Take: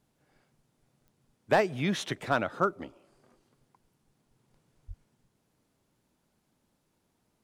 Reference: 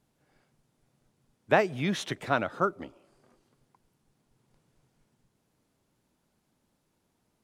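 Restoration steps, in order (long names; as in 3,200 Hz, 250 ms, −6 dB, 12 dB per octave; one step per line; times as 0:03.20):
clipped peaks rebuilt −14 dBFS
click removal
0:04.87–0:04.99: high-pass filter 140 Hz 24 dB per octave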